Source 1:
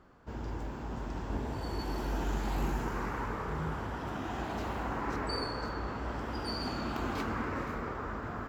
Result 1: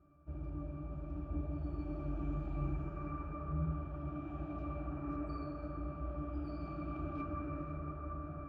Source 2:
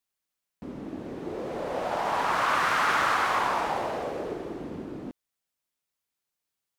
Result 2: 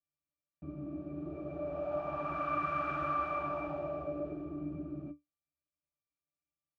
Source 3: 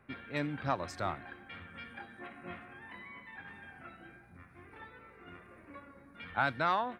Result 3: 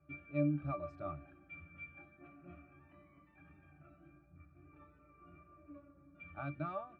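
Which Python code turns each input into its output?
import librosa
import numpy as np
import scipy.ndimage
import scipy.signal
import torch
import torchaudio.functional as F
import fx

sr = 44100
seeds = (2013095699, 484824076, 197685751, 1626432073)

y = fx.octave_resonator(x, sr, note='D', decay_s=0.16)
y = F.gain(torch.from_numpy(y), 5.0).numpy()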